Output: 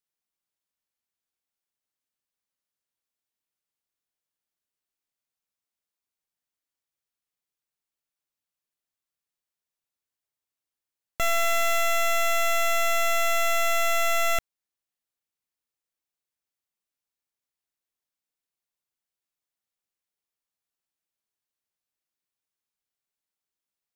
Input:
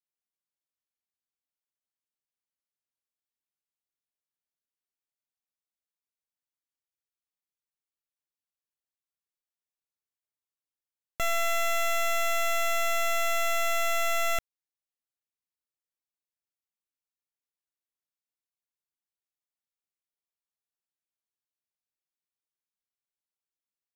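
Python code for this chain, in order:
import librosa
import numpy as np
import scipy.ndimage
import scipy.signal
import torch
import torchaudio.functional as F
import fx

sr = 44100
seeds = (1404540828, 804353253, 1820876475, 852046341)

y = fx.quant_dither(x, sr, seeds[0], bits=8, dither='triangular', at=(11.22, 11.81))
y = y * librosa.db_to_amplitude(3.5)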